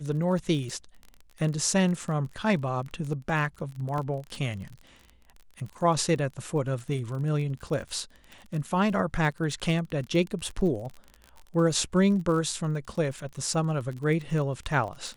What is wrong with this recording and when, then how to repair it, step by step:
surface crackle 32 per second −34 dBFS
0:03.98: drop-out 2.3 ms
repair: click removal
repair the gap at 0:03.98, 2.3 ms

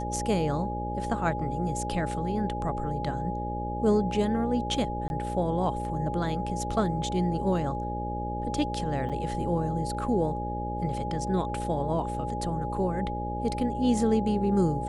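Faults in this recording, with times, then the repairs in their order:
mains buzz 60 Hz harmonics 10 −34 dBFS
whistle 830 Hz −33 dBFS
0:05.08–0:05.10: drop-out 21 ms
0:09.09–0:09.10: drop-out 7 ms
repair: hum removal 60 Hz, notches 10
notch filter 830 Hz, Q 30
repair the gap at 0:05.08, 21 ms
repair the gap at 0:09.09, 7 ms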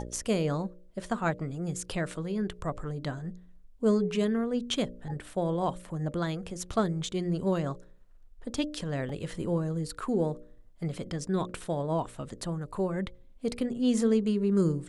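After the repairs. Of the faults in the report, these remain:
none of them is left

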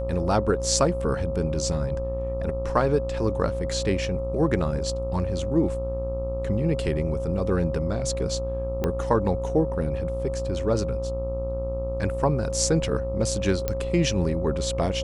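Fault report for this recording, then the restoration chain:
mains buzz 60 Hz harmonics 22 −31 dBFS
whistle 540 Hz −29 dBFS
0:08.84: click −12 dBFS
0:13.68: click −11 dBFS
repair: click removal
hum removal 60 Hz, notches 22
notch filter 540 Hz, Q 30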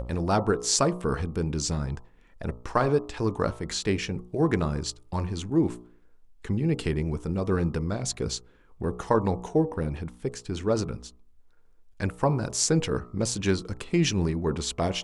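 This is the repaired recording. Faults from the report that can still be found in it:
0:08.84: click

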